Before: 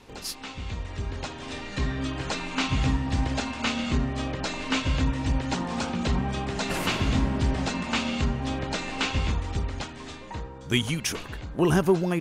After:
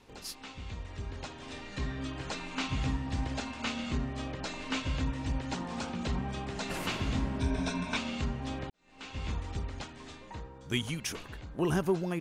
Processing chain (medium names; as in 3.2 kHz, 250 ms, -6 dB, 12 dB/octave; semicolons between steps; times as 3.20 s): 7.40–7.97 s: rippled EQ curve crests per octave 1.6, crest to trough 12 dB; 8.70–9.34 s: fade in quadratic; trim -7.5 dB